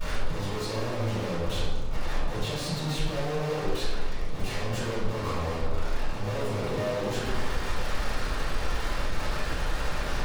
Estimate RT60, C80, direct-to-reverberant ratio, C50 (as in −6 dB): 1.5 s, 1.5 dB, −14.5 dB, −1.0 dB